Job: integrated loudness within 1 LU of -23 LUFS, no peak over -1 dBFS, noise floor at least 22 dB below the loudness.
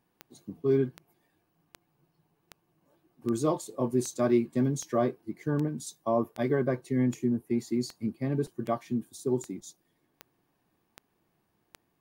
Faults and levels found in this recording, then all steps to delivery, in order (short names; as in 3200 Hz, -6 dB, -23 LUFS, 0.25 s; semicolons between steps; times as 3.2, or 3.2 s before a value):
clicks 16; loudness -30.0 LUFS; peak -13.5 dBFS; loudness target -23.0 LUFS
-> de-click; gain +7 dB